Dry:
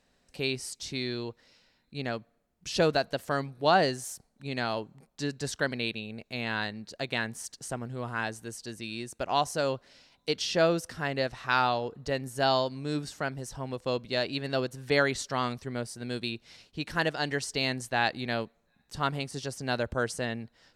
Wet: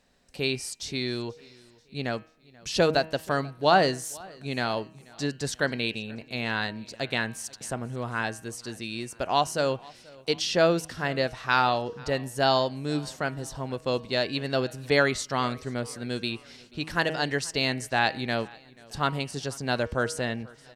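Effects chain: de-hum 158.9 Hz, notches 20; on a send: feedback echo 0.485 s, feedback 53%, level -24 dB; on the sum: gain +3 dB

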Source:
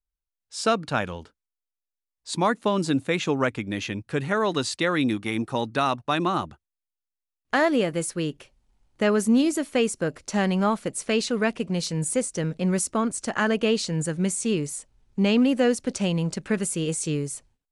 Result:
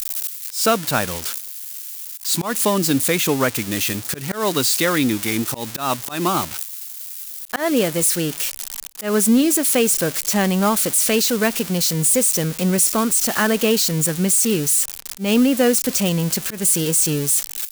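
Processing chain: switching spikes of -18 dBFS; auto swell 0.15 s; gain +4.5 dB

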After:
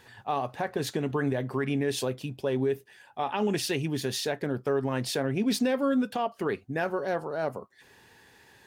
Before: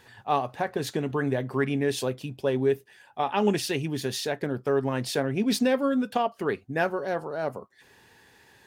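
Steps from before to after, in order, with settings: limiter -18.5 dBFS, peak gain reduction 7.5 dB

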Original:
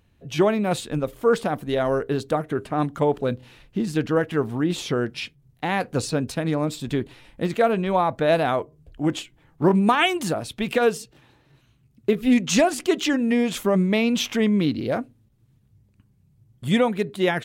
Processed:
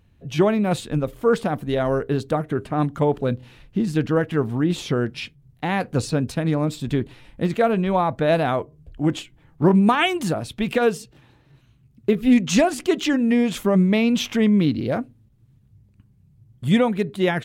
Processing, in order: tone controls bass +5 dB, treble -2 dB

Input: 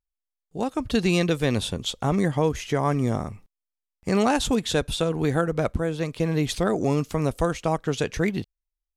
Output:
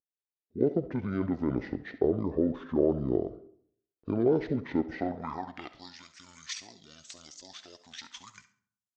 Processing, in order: spectral noise reduction 9 dB; in parallel at -0.5 dB: negative-ratio compressor -24 dBFS, ratio -0.5; on the sum: pitch shift -10.5 st; band-pass sweep 390 Hz -> 6900 Hz, 4.87–6.04; on a send: thinning echo 68 ms, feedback 30%, level -15 dB; on the sum: digital reverb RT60 0.64 s, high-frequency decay 0.45×, pre-delay 15 ms, DRR 14.5 dB

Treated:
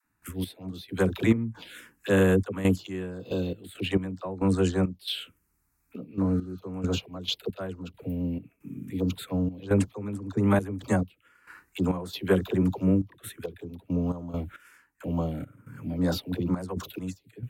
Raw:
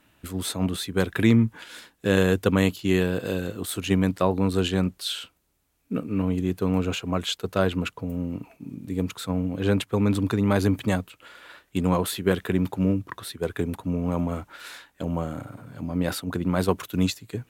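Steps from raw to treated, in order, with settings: 2.9–4.95 bell 12000 Hz -13 dB 0.26 oct; 6.27–6.57 spectral repair 1200–9300 Hz both; envelope phaser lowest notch 540 Hz, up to 4700 Hz, full sweep at -17.5 dBFS; dispersion lows, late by 54 ms, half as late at 450 Hz; step gate ".x..xx.xxxx.x..x" 68 bpm -12 dB

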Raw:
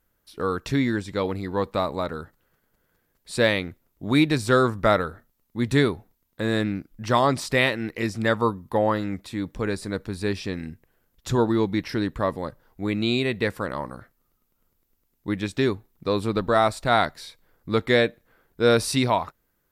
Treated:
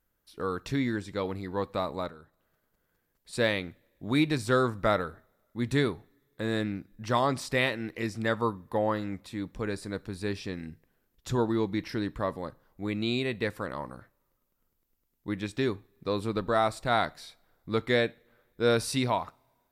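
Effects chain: 2.08–3.33 compressor 3:1, threshold -44 dBFS, peak gain reduction 11.5 dB; two-slope reverb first 0.37 s, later 1.8 s, from -22 dB, DRR 19 dB; gain -6 dB

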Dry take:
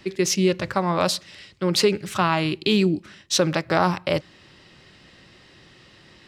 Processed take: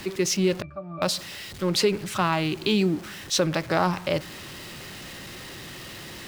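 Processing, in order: zero-crossing step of -32 dBFS; 0.62–1.02 octave resonator D, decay 0.16 s; gain -3.5 dB

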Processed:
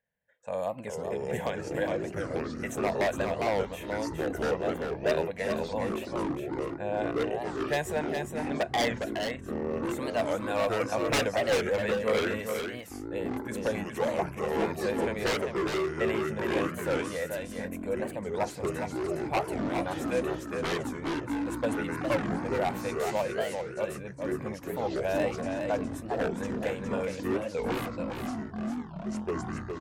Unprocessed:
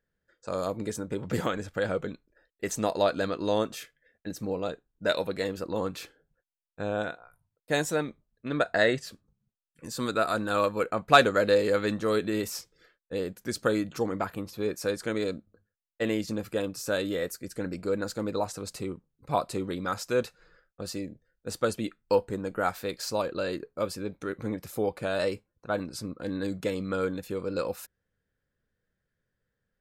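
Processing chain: HPF 290 Hz 6 dB/oct; high shelf 3200 Hz -7.5 dB; fixed phaser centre 1300 Hz, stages 6; wavefolder -24.5 dBFS; echoes that change speed 0.405 s, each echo -5 st, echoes 3; on a send: echo 0.412 s -5.5 dB; on the sum: record warp 45 rpm, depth 250 cents; gain +3.5 dB

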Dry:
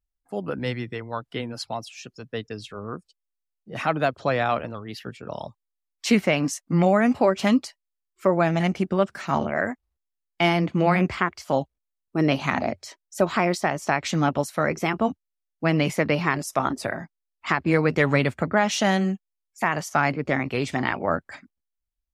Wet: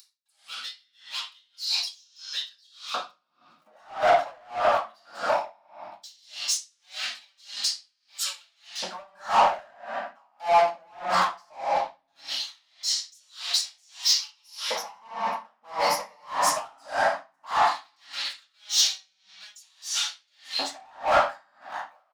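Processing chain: upward compressor, threshold -30 dBFS; 13.94–16.28 ripple EQ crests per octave 0.85, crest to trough 15 dB; compressor 2:1, threshold -25 dBFS, peak gain reduction 6.5 dB; low shelf 240 Hz -11 dB; fixed phaser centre 1000 Hz, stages 4; echo 0.868 s -22 dB; sample leveller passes 5; LFO high-pass square 0.17 Hz 700–3700 Hz; reverb RT60 1.3 s, pre-delay 4 ms, DRR -11 dB; flange 0.13 Hz, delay 8.7 ms, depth 2.7 ms, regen -65%; soft clip -7.5 dBFS, distortion -13 dB; dB-linear tremolo 1.7 Hz, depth 36 dB; gain -4 dB

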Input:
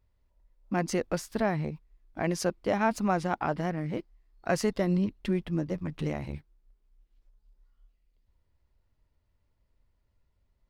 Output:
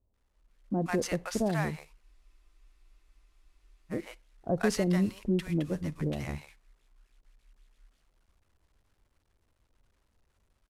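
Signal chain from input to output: CVSD 64 kbps; AGC gain up to 5 dB; bands offset in time lows, highs 0.14 s, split 750 Hz; on a send at -23.5 dB: reverb RT60 0.25 s, pre-delay 38 ms; on the sum: spectral freeze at 2.05, 1.86 s; gain -4.5 dB

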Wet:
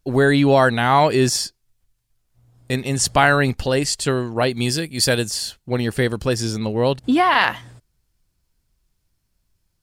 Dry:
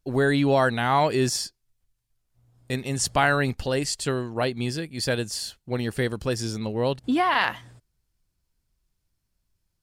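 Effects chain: 4.49–5.29 high shelf 3800 Hz -> 5800 Hz +9.5 dB; gain +6 dB

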